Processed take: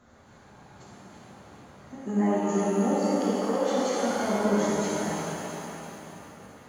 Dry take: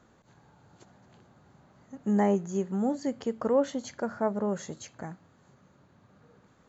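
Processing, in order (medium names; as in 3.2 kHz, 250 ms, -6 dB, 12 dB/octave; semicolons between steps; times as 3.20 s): 1.95–4.03 s: high-pass 300 Hz 6 dB/octave; peak limiter -26.5 dBFS, peak gain reduction 11.5 dB; two-band feedback delay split 480 Hz, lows 245 ms, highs 334 ms, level -7.5 dB; pitch-shifted reverb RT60 2.6 s, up +7 st, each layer -8 dB, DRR -8.5 dB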